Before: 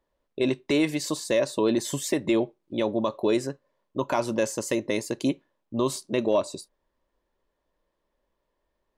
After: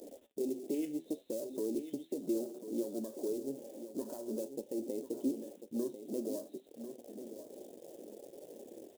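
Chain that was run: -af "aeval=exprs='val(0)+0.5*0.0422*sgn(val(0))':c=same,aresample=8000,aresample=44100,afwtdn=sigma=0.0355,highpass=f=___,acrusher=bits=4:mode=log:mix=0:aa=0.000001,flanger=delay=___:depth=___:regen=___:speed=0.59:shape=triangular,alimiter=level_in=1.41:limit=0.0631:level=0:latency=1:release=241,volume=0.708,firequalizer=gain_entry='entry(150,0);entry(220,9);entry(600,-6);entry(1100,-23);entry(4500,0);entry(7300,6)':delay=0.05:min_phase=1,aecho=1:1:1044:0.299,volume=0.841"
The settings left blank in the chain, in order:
480, 6.2, 7.7, 69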